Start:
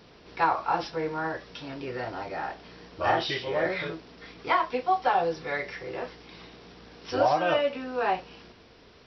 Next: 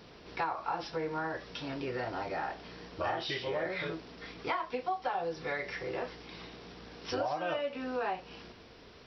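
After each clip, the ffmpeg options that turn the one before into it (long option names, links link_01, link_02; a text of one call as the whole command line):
ffmpeg -i in.wav -af "acompressor=threshold=-32dB:ratio=4" out.wav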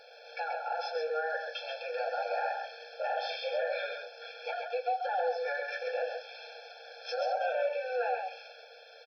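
ffmpeg -i in.wav -filter_complex "[0:a]alimiter=level_in=4.5dB:limit=-24dB:level=0:latency=1:release=10,volume=-4.5dB,asplit=2[link_01][link_02];[link_02]aecho=0:1:133:0.562[link_03];[link_01][link_03]amix=inputs=2:normalize=0,afftfilt=real='re*eq(mod(floor(b*sr/1024/450),2),1)':imag='im*eq(mod(floor(b*sr/1024/450),2),1)':win_size=1024:overlap=0.75,volume=5dB" out.wav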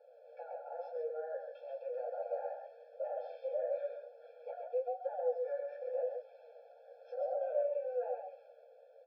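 ffmpeg -i in.wav -af "flanger=delay=8:depth=8:regen=34:speed=0.97:shape=triangular,bandpass=frequency=550:width_type=q:width=5.8:csg=0,volume=4dB" out.wav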